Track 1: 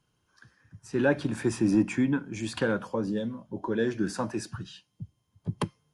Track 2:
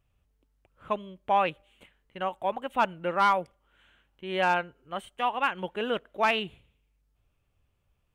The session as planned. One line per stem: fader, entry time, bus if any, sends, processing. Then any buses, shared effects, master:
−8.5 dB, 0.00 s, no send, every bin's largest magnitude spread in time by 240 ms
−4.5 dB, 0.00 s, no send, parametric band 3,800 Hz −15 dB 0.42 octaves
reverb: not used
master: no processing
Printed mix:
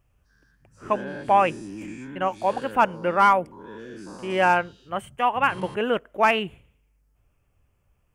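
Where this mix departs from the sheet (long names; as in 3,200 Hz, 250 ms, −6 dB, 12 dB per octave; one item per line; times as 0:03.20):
stem 1 −8.5 dB → −17.5 dB
stem 2 −4.5 dB → +6.0 dB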